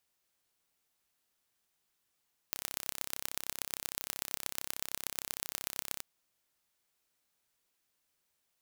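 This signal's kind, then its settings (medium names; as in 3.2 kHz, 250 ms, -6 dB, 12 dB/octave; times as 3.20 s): pulse train 33.1 per s, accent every 4, -6 dBFS 3.49 s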